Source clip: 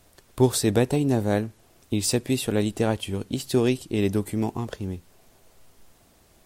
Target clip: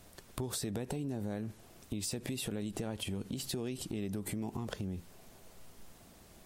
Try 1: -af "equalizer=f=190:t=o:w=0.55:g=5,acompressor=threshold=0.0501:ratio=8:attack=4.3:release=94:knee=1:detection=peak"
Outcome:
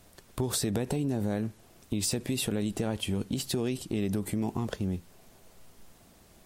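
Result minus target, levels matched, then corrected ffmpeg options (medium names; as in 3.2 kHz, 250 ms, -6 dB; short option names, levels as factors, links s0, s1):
compression: peak gain reduction -8 dB
-af "equalizer=f=190:t=o:w=0.55:g=5,acompressor=threshold=0.0178:ratio=8:attack=4.3:release=94:knee=1:detection=peak"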